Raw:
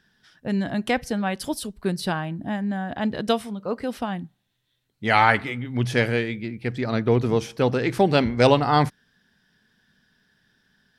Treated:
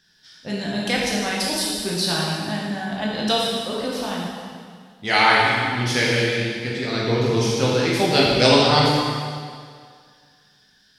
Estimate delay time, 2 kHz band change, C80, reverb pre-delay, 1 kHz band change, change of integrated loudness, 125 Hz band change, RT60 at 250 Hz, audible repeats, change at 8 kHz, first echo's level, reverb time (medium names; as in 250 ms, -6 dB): no echo, +5.0 dB, 0.5 dB, 6 ms, +2.0 dB, +3.5 dB, +1.5 dB, 2.0 s, no echo, +11.5 dB, no echo, 2.0 s